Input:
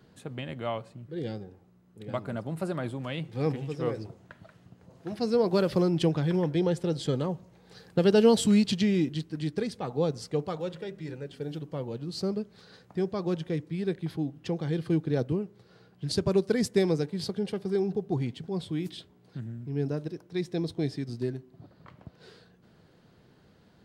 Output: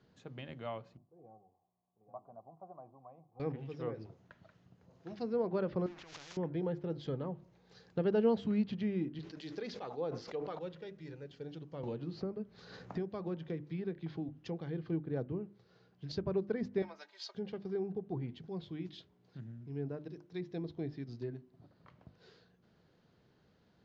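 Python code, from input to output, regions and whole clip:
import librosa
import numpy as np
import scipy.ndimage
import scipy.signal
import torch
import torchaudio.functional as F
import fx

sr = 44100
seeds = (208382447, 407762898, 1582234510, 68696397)

y = fx.chain(x, sr, fx.formant_cascade(vowel='a'),
    fx.tilt_shelf(db=9.5, hz=1400.0), at=(0.97, 3.4))
y = fx.chain(y, sr, fx.crossing_spikes(level_db=-22.0),
    fx.over_compress(threshold_db=-31.0, ratio=-1.0),
    fx.spectral_comp(ratio=4.0), at=(5.86, 6.37))
y = fx.chain(y, sr, fx.bass_treble(bass_db=-13, treble_db=3),
    fx.sustainer(db_per_s=35.0), at=(9.19, 10.59))
y = fx.chain(y, sr, fx.high_shelf(hz=8000.0, db=6.5),
    fx.band_squash(depth_pct=100), at=(11.83, 14.29))
y = fx.chain(y, sr, fx.highpass(hz=720.0, slope=24),
    fx.comb(ms=3.2, depth=0.75), at=(16.82, 17.35))
y = fx.env_lowpass_down(y, sr, base_hz=1900.0, full_db=-25.0)
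y = scipy.signal.sosfilt(scipy.signal.butter(12, 7000.0, 'lowpass', fs=sr, output='sos'), y)
y = fx.hum_notches(y, sr, base_hz=50, count=7)
y = y * librosa.db_to_amplitude(-9.0)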